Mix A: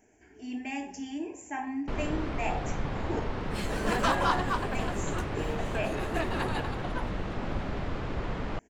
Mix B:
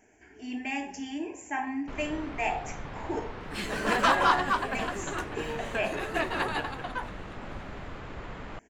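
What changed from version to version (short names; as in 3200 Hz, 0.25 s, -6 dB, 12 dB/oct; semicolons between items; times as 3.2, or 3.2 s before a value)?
first sound -8.5 dB; master: add bell 1800 Hz +5.5 dB 2.6 oct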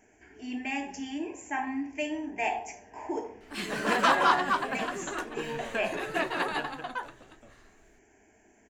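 first sound: muted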